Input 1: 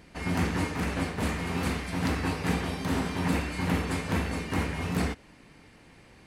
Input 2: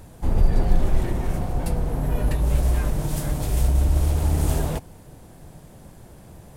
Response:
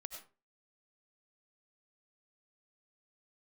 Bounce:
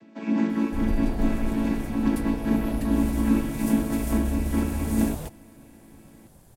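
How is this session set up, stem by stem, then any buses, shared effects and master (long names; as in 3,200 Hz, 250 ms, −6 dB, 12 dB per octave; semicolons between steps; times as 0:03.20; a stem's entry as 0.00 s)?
+2.5 dB, 0.00 s, no send, channel vocoder with a chord as carrier major triad, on A3; low-shelf EQ 180 Hz +10.5 dB
−9.0 dB, 0.50 s, no send, high-shelf EQ 6,400 Hz +8 dB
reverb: not used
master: no processing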